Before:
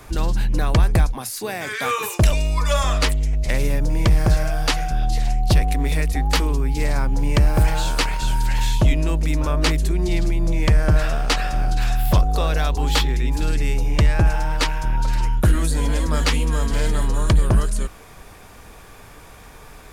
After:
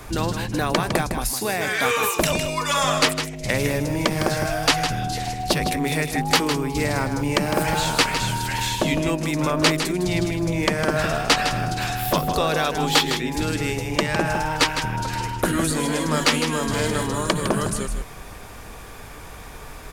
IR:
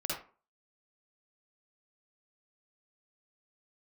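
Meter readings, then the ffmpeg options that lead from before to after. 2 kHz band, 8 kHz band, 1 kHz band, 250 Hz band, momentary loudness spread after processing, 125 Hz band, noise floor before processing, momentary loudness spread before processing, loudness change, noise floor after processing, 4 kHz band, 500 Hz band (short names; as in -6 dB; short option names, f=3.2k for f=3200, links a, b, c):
+4.0 dB, +4.0 dB, +3.5 dB, +2.5 dB, 8 LU, -6.0 dB, -43 dBFS, 5 LU, -1.0 dB, -39 dBFS, +4.0 dB, +3.5 dB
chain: -filter_complex "[0:a]asplit=2[a][b];[b]aecho=0:1:157:0.376[c];[a][c]amix=inputs=2:normalize=0,afftfilt=real='re*lt(hypot(re,im),0.708)':imag='im*lt(hypot(re,im),0.708)':win_size=1024:overlap=0.75,volume=3.5dB"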